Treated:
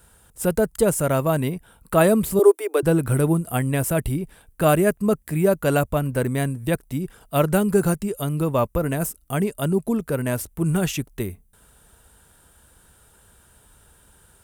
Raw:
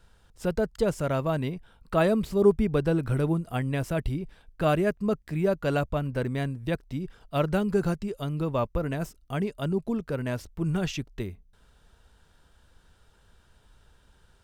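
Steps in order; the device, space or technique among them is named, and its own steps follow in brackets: budget condenser microphone (high-pass 64 Hz 6 dB/octave; resonant high shelf 7.1 kHz +13 dB, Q 1.5); 2.39–2.83 s: steep high-pass 310 Hz 96 dB/octave; trim +6.5 dB

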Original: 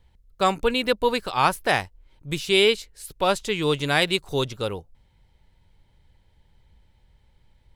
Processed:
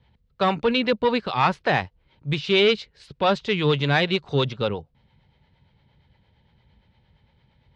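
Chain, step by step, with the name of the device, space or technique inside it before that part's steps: guitar amplifier with harmonic tremolo (harmonic tremolo 8.7 Hz, depth 50%, crossover 410 Hz; saturation -17 dBFS, distortion -13 dB; cabinet simulation 80–4400 Hz, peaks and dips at 140 Hz +5 dB, 220 Hz +4 dB, 320 Hz -3 dB); trim +5.5 dB

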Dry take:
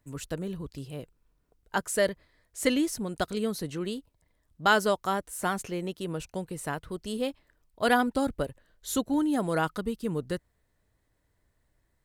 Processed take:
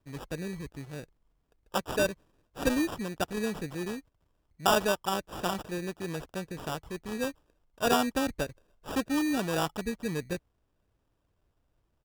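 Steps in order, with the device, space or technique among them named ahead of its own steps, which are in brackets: crushed at another speed (playback speed 0.8×; sample-and-hold 26×; playback speed 1.25×); trim -2 dB

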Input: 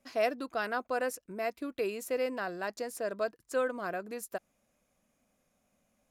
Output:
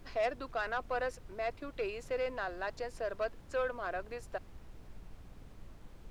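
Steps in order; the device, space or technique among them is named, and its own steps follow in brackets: aircraft cabin announcement (band-pass 440–4100 Hz; saturation -25.5 dBFS, distortion -17 dB; brown noise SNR 10 dB)

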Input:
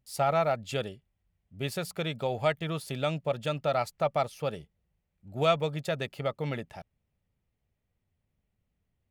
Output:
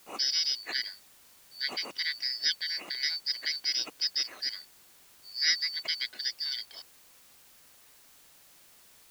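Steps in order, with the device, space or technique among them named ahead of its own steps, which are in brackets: split-band scrambled radio (four frequency bands reordered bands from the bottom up 4321; band-pass 310–3100 Hz; white noise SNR 23 dB); trim +6 dB

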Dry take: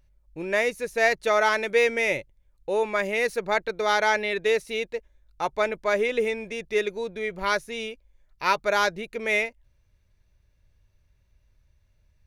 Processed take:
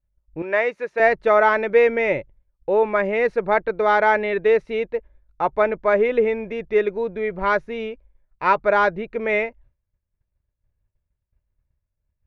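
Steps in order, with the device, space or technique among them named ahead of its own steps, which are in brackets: hearing-loss simulation (low-pass 1.6 kHz 12 dB/octave; expander -50 dBFS); 0.42–1.00 s: frequency weighting A; trim +6.5 dB

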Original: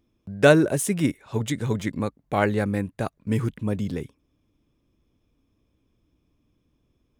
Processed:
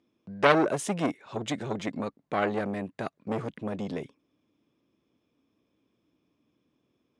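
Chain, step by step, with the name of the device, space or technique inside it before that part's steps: public-address speaker with an overloaded transformer (transformer saturation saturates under 1.5 kHz; band-pass 200–5600 Hz)

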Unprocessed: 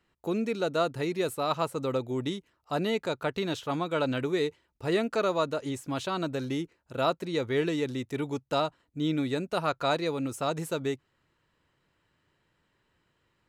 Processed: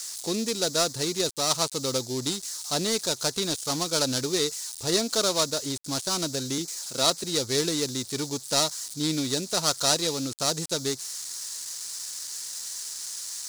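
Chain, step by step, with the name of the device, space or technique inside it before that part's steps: 6.58–7.24 s: high-pass 130 Hz 24 dB/octave; budget class-D amplifier (dead-time distortion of 0.17 ms; zero-crossing glitches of -30 dBFS); high-order bell 6.1 kHz +15.5 dB

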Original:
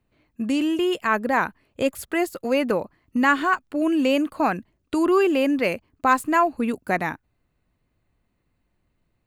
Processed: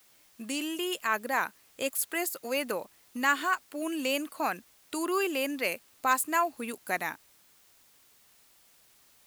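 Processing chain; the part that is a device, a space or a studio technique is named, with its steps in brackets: turntable without a phono preamp (RIAA curve recording; white noise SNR 29 dB); trim -7.5 dB

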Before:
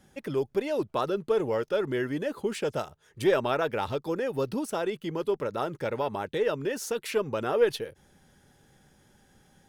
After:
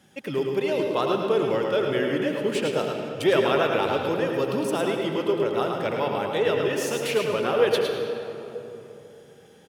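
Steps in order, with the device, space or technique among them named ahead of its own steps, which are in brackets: PA in a hall (high-pass 110 Hz; peaking EQ 2.9 kHz +6 dB 0.72 oct; delay 108 ms -6 dB; reverberation RT60 3.2 s, pre-delay 72 ms, DRR 3.5 dB); trim +2 dB

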